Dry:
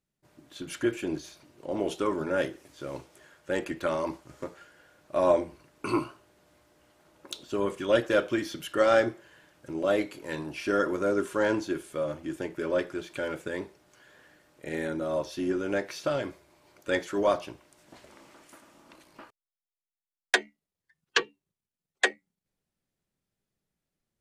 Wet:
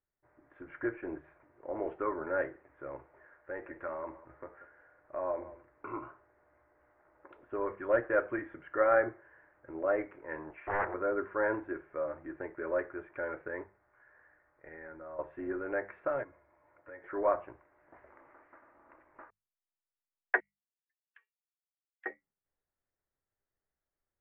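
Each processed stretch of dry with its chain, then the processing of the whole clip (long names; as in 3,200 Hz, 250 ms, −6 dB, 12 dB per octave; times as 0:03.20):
0:02.95–0:06.03: downward compressor 1.5 to 1, threshold −40 dBFS + single-tap delay 185 ms −16.5 dB
0:10.50–0:10.94: high-pass filter 370 Hz + highs frequency-modulated by the lows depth 0.86 ms
0:13.63–0:15.19: low-pass filter 2,500 Hz + parametric band 350 Hz −6.5 dB 2.4 octaves + downward compressor 2.5 to 1, threshold −40 dBFS
0:16.23–0:17.04: downward compressor 3 to 1, threshold −44 dBFS + notch comb filter 390 Hz
0:20.40–0:22.06: four-pole ladder band-pass 4,100 Hz, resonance 40% + downward compressor 12 to 1, threshold −39 dBFS
whole clip: Butterworth low-pass 2,000 Hz 48 dB per octave; parametric band 190 Hz −15 dB 1.3 octaves; mains-hum notches 50/100/150/200 Hz; level −2 dB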